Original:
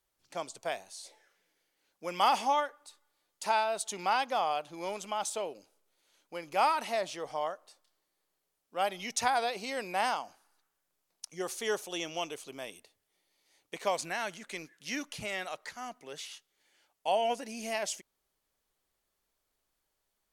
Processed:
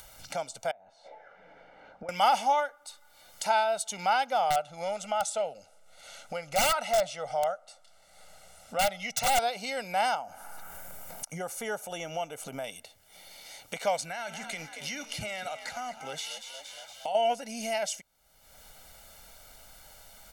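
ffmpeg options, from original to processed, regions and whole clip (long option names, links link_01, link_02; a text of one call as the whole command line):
ffmpeg -i in.wav -filter_complex "[0:a]asettb=1/sr,asplit=3[link_01][link_02][link_03];[link_01]atrim=end=0.714[link_04];[link_02]atrim=start=0.71:end=2.09,asetpts=PTS-STARTPTS,afade=type=in:duration=0.004:curve=qsin,afade=type=out:start_time=1.376:duration=0.004:curve=qsin,lowpass=1100,lowshelf=frequency=120:gain=-8.5,acompressor=threshold=-55dB:ratio=5:attack=3.2:release=140:knee=1:detection=peak[link_05];[link_03]atrim=start=2.086[link_06];[link_04][link_05]acrossfade=duration=0.004:curve1=hsin:curve2=qsin[link_07];[link_07][link_06]acrossfade=duration=0.004:curve1=qsin:curve2=hsin,asettb=1/sr,asplit=3[link_08][link_09][link_10];[link_08]atrim=end=4.504[link_11];[link_09]atrim=start=4.5:end=9.39,asetpts=PTS-STARTPTS,afade=type=in:duration=0.004:curve=qsin,afade=type=out:start_time=4.886:duration=0.004:curve=qsin,lowpass=9200,aeval=exprs='(mod(12.6*val(0)+1,2)-1)/12.6':channel_layout=same,aecho=1:1:1.5:0.48,atrim=end_sample=215649[link_12];[link_10]atrim=start=9.386[link_13];[link_11][link_12]acrossfade=duration=0.004:curve1=hsin:curve2=qsin[link_14];[link_14][link_13]acrossfade=duration=0.004:curve1=qsin:curve2=hsin,asettb=1/sr,asplit=3[link_15][link_16][link_17];[link_15]atrim=end=10.154[link_18];[link_16]atrim=start=10.15:end=12.64,asetpts=PTS-STARTPTS,afade=type=in:duration=0.004:curve=qsin,afade=type=out:start_time=2.486:duration=0.004:curve=qsin,equalizer=frequency=4200:width_type=o:width=1.6:gain=-12.5,acompressor=mode=upward:threshold=-38dB:ratio=2.5:attack=3.2:release=140:knee=2.83:detection=peak[link_19];[link_17]atrim=start=12.636[link_20];[link_18][link_19]acrossfade=duration=0.004:curve1=hsin:curve2=qsin[link_21];[link_21][link_20]acrossfade=duration=0.004:curve1=qsin:curve2=hsin,asettb=1/sr,asplit=3[link_22][link_23][link_24];[link_22]atrim=end=14.034[link_25];[link_23]atrim=start=14.03:end=17.15,asetpts=PTS-STARTPTS,afade=type=in:duration=0.004:curve=qsin,afade=type=out:start_time=3.116:duration=0.004:curve=qsin,bandreject=frequency=222.1:width_type=h:width=4,bandreject=frequency=444.2:width_type=h:width=4,bandreject=frequency=666.3:width_type=h:width=4,bandreject=frequency=888.4:width_type=h:width=4,bandreject=frequency=1110.5:width_type=h:width=4,bandreject=frequency=1332.6:width_type=h:width=4,bandreject=frequency=1554.7:width_type=h:width=4,bandreject=frequency=1776.8:width_type=h:width=4,bandreject=frequency=1998.9:width_type=h:width=4,bandreject=frequency=2221:width_type=h:width=4,bandreject=frequency=2443.1:width_type=h:width=4,bandreject=frequency=2665.2:width_type=h:width=4,bandreject=frequency=2887.3:width_type=h:width=4,bandreject=frequency=3109.4:width_type=h:width=4,bandreject=frequency=3331.5:width_type=h:width=4,bandreject=frequency=3553.6:width_type=h:width=4,bandreject=frequency=3775.7:width_type=h:width=4,bandreject=frequency=3997.8:width_type=h:width=4,bandreject=frequency=4219.9:width_type=h:width=4,bandreject=frequency=4442:width_type=h:width=4,bandreject=frequency=4664.1:width_type=h:width=4,bandreject=frequency=4886.2:width_type=h:width=4,bandreject=frequency=5108.3:width_type=h:width=4,bandreject=frequency=5330.4:width_type=h:width=4,bandreject=frequency=5552.5:width_type=h:width=4,bandreject=frequency=5774.6:width_type=h:width=4,bandreject=frequency=5996.7:width_type=h:width=4,bandreject=frequency=6218.8:width_type=h:width=4,bandreject=frequency=6440.9:width_type=h:width=4,acompressor=threshold=-38dB:ratio=2.5:attack=3.2:release=140:knee=1:detection=peak,asplit=6[link_26][link_27][link_28][link_29][link_30][link_31];[link_27]adelay=233,afreqshift=65,volume=-12dB[link_32];[link_28]adelay=466,afreqshift=130,volume=-18.9dB[link_33];[link_29]adelay=699,afreqshift=195,volume=-25.9dB[link_34];[link_30]adelay=932,afreqshift=260,volume=-32.8dB[link_35];[link_31]adelay=1165,afreqshift=325,volume=-39.7dB[link_36];[link_26][link_32][link_33][link_34][link_35][link_36]amix=inputs=6:normalize=0,atrim=end_sample=137592[link_37];[link_24]atrim=start=17.146[link_38];[link_25][link_37]acrossfade=duration=0.004:curve1=hsin:curve2=qsin[link_39];[link_39][link_38]acrossfade=duration=0.004:curve1=qsin:curve2=hsin,aecho=1:1:1.4:0.75,acompressor=mode=upward:threshold=-30dB:ratio=2.5" out.wav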